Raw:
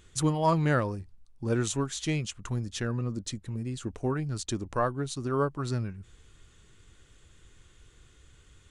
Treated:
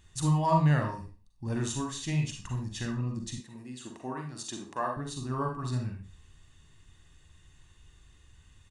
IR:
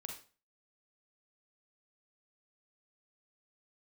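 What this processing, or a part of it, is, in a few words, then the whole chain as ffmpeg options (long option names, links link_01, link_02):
microphone above a desk: -filter_complex "[0:a]aecho=1:1:1.1:0.52[link_01];[1:a]atrim=start_sample=2205[link_02];[link_01][link_02]afir=irnorm=-1:irlink=0,asettb=1/sr,asplit=3[link_03][link_04][link_05];[link_03]atrim=end=3.404[link_06];[link_04]atrim=start=3.4:end=4.97,asetpts=PTS-STARTPTS,afade=type=in:duration=0.004:curve=qsin,afade=type=out:start_time=1.566:duration=0.004:curve=qsin,highpass=280[link_07];[link_05]atrim=start=4.966[link_08];[link_06][link_07]acrossfade=duration=0.004:curve1=hsin:curve2=qsin[link_09];[link_09][link_08]acrossfade=duration=0.004:curve1=qsin:curve2=hsin"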